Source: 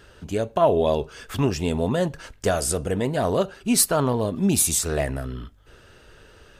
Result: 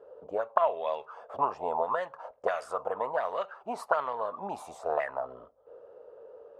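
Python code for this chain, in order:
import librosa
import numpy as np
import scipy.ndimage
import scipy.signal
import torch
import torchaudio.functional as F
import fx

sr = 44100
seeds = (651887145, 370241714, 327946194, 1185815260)

y = fx.band_shelf(x, sr, hz=770.0, db=14.0, octaves=1.7)
y = fx.auto_wah(y, sr, base_hz=460.0, top_hz=2100.0, q=3.9, full_db=-7.0, direction='up')
y = y * librosa.db_to_amplitude(-1.5)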